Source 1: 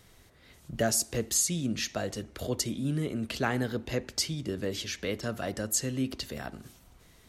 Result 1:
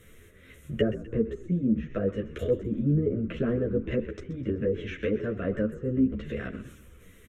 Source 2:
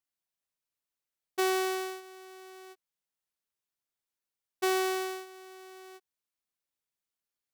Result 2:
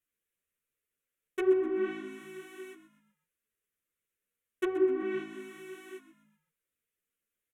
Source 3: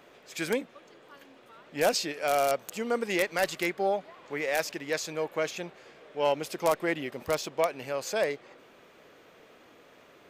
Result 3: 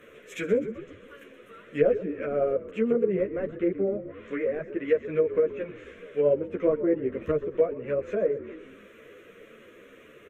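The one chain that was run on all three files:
treble cut that deepens with the level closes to 630 Hz, closed at −27.5 dBFS
parametric band 480 Hz +8.5 dB 0.54 octaves
phaser with its sweep stopped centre 2,000 Hz, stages 4
echo with shifted repeats 127 ms, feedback 45%, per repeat −55 Hz, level −14 dB
string-ensemble chorus
level +8.5 dB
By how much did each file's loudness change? +2.0, +0.5, +2.5 LU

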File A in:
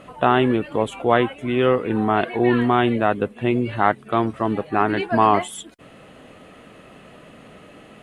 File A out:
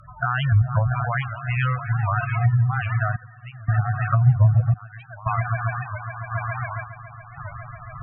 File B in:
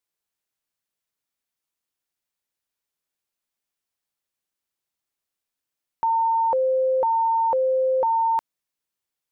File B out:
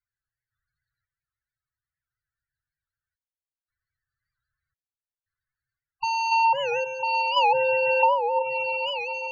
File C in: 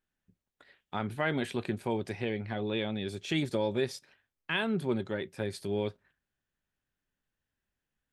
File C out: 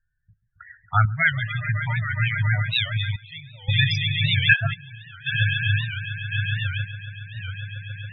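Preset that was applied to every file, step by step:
adaptive Wiener filter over 15 samples
elliptic band-stop filter 130–690 Hz, stop band 60 dB
downward compressor 6 to 1, threshold −23 dBFS
on a send: echo that builds up and dies away 138 ms, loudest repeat 5, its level −11 dB
on the sum: sample-and-hold tremolo 1.9 Hz, depth 95%
in parallel at −11 dB: dead-zone distortion −42.5 dBFS
on the sum: drawn EQ curve 340 Hz 0 dB, 780 Hz −15 dB, 1,500 Hz −1 dB, 3,700 Hz +2 dB
spectral peaks only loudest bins 16
treble cut that deepens with the level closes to 420 Hz, closed at −30 dBFS
high-shelf EQ 2,700 Hz +6.5 dB
wow of a warped record 78 rpm, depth 160 cents
loudness normalisation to −23 LKFS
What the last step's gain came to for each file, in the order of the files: +16.0, +18.0, +23.0 decibels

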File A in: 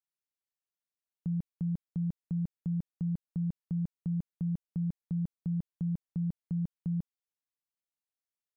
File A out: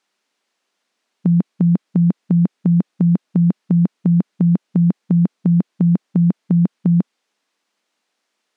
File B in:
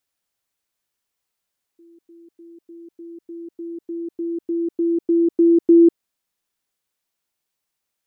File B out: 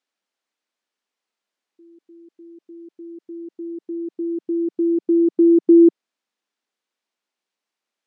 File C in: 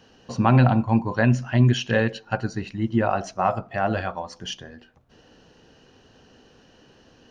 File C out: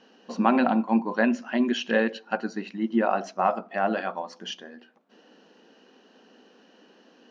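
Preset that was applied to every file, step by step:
linear-phase brick-wall high-pass 180 Hz
high-frequency loss of the air 89 metres
normalise the peak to −6 dBFS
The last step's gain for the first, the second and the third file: +27.0, +1.0, −0.5 decibels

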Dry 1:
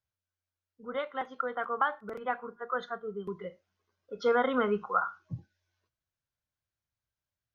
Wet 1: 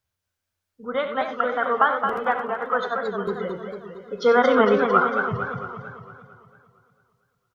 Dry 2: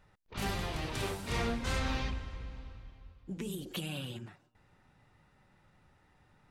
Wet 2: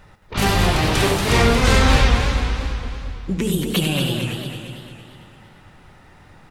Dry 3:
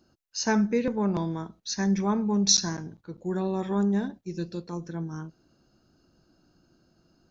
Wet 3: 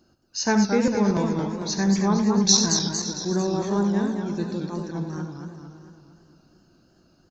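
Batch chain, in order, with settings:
on a send: multi-tap delay 71/93/566 ms −12.5/−11/−18 dB
on the sum: feedback echo with a swinging delay time 226 ms, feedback 54%, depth 168 cents, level −6 dB
normalise the peak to −3 dBFS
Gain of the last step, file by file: +8.5, +16.5, +3.0 decibels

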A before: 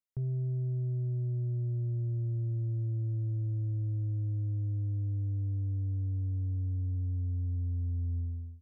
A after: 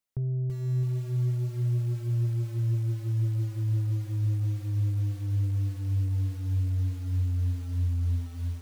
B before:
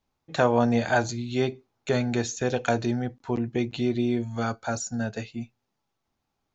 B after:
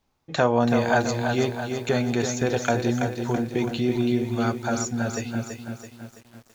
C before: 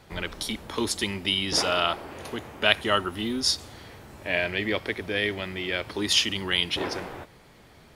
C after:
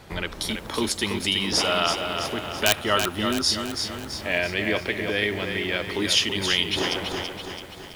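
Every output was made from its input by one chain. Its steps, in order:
in parallel at 0 dB: downward compressor 16 to 1, threshold −37 dBFS
on the sum: wrap-around overflow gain 6.5 dB
feedback echo at a low word length 331 ms, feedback 55%, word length 8 bits, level −6 dB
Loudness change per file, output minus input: +4.5, +2.0, +2.0 LU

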